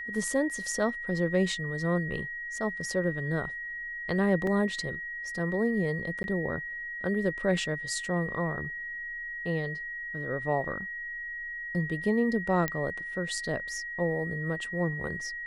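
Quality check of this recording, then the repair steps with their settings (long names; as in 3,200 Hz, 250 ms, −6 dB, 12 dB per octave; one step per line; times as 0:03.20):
whistle 1,900 Hz −35 dBFS
0:04.47: drop-out 2.8 ms
0:06.23–0:06.24: drop-out 11 ms
0:12.68: click −14 dBFS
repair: click removal
notch filter 1,900 Hz, Q 30
repair the gap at 0:04.47, 2.8 ms
repair the gap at 0:06.23, 11 ms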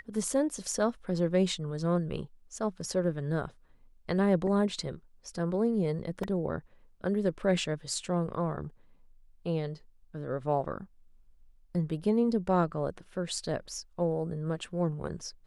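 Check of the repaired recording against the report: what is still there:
none of them is left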